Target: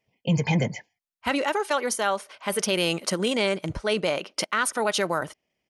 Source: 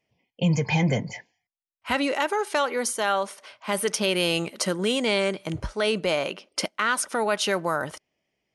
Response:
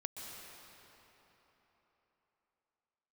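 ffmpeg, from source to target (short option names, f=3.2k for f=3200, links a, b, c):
-af "atempo=1.5"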